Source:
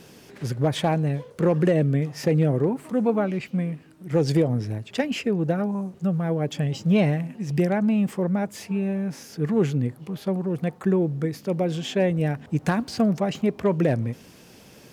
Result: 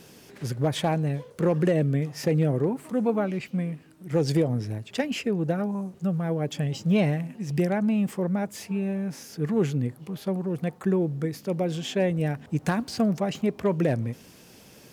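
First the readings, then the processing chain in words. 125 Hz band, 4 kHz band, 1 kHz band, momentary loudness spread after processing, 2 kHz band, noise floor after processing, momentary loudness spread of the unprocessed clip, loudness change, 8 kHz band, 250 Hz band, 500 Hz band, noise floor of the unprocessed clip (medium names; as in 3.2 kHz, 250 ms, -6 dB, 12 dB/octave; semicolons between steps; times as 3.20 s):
-2.5 dB, -1.5 dB, -2.5 dB, 7 LU, -2.0 dB, -51 dBFS, 7 LU, -2.5 dB, 0.0 dB, -2.5 dB, -2.5 dB, -50 dBFS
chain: treble shelf 5.9 kHz +4.5 dB; trim -2.5 dB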